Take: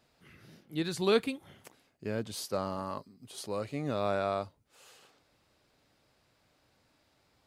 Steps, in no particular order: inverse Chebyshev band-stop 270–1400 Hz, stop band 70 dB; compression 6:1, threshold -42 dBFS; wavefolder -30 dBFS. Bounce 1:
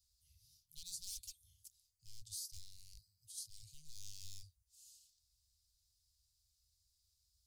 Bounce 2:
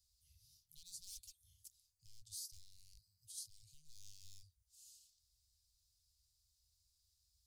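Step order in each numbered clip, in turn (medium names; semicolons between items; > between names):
wavefolder > inverse Chebyshev band-stop > compression; wavefolder > compression > inverse Chebyshev band-stop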